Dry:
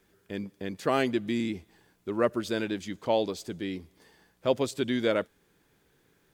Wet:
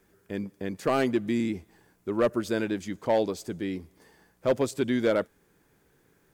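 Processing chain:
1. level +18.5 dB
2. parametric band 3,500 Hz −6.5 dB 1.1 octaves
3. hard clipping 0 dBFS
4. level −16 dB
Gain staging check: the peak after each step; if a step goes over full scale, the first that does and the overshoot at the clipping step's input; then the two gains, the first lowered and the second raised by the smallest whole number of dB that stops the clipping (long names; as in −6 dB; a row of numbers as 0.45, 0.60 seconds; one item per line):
+8.0, +7.5, 0.0, −16.0 dBFS
step 1, 7.5 dB
step 1 +10.5 dB, step 4 −8 dB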